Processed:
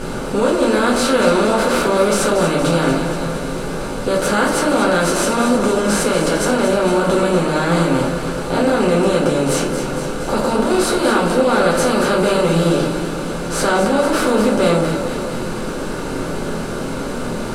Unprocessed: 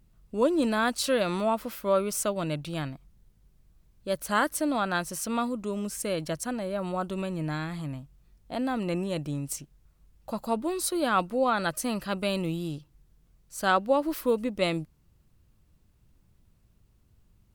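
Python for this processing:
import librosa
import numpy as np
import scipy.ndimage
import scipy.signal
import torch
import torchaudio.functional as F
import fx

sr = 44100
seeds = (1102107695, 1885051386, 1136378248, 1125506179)

p1 = fx.bin_compress(x, sr, power=0.4)
p2 = scipy.signal.sosfilt(scipy.signal.butter(2, 9300.0, 'lowpass', fs=sr, output='sos'), p1)
p3 = fx.over_compress(p2, sr, threshold_db=-29.0, ratio=-1.0)
p4 = p2 + F.gain(torch.from_numpy(p3), -0.5).numpy()
p5 = fx.peak_eq(p4, sr, hz=350.0, db=4.0, octaves=1.1)
p6 = p5 + fx.echo_alternate(p5, sr, ms=116, hz=940.0, feedback_pct=82, wet_db=-7.5, dry=0)
p7 = fx.room_shoebox(p6, sr, seeds[0], volume_m3=32.0, walls='mixed', distance_m=1.1)
y = F.gain(torch.from_numpy(p7), -6.0).numpy()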